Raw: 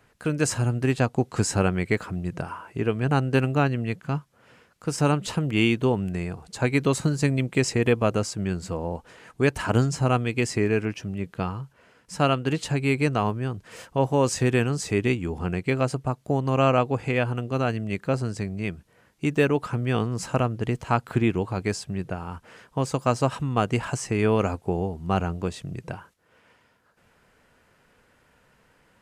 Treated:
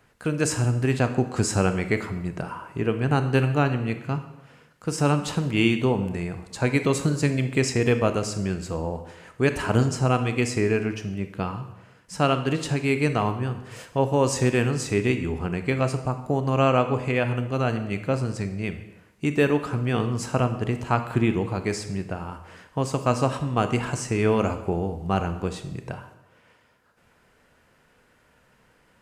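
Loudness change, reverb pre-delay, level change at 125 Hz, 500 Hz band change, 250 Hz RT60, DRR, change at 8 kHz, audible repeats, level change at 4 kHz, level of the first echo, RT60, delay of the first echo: +0.5 dB, 24 ms, +0.5 dB, +0.5 dB, 0.90 s, 8.5 dB, +0.5 dB, no echo audible, +0.5 dB, no echo audible, 0.90 s, no echo audible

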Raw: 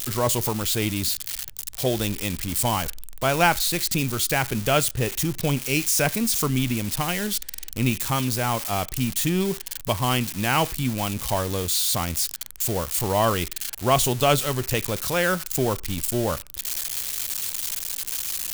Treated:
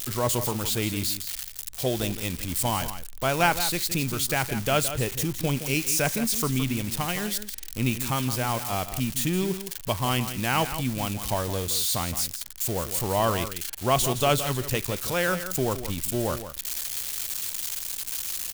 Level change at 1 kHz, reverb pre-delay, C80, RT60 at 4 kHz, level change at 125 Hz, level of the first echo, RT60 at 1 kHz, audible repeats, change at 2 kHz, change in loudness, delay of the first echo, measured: −2.5 dB, no reverb audible, no reverb audible, no reverb audible, −2.5 dB, −11.0 dB, no reverb audible, 1, −2.5 dB, −2.5 dB, 167 ms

